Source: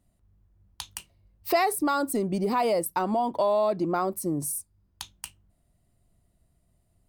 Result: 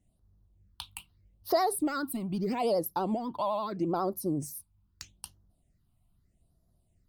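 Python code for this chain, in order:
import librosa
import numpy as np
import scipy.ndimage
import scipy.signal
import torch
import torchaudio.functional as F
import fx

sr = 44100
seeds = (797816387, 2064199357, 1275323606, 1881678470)

y = fx.phaser_stages(x, sr, stages=6, low_hz=450.0, high_hz=2600.0, hz=0.79, feedback_pct=5)
y = fx.vibrato(y, sr, rate_hz=12.0, depth_cents=75.0)
y = y * librosa.db_to_amplitude(-2.0)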